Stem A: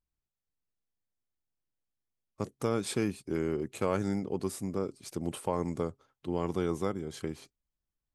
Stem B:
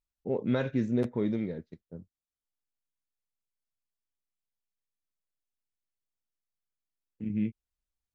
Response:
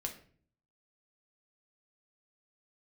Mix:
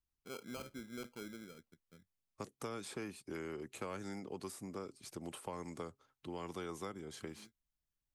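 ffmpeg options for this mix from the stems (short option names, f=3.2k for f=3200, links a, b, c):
-filter_complex "[0:a]acrossover=split=240|490|1600[a][b][c][d];[a]acompressor=threshold=-51dB:ratio=4[e];[b]acompressor=threshold=-42dB:ratio=4[f];[c]acompressor=threshold=-40dB:ratio=4[g];[d]acompressor=threshold=-47dB:ratio=4[h];[e][f][g][h]amix=inputs=4:normalize=0,volume=-2.5dB,asplit=2[i][j];[1:a]acrossover=split=260[k][l];[k]acompressor=threshold=-55dB:ratio=2[m];[m][l]amix=inputs=2:normalize=0,acrusher=samples=24:mix=1:aa=0.000001,volume=-13dB[n];[j]apad=whole_len=359413[o];[n][o]sidechaincompress=threshold=-56dB:ratio=3:attack=16:release=635[p];[i][p]amix=inputs=2:normalize=0,equalizer=f=510:w=0.83:g=-4.5"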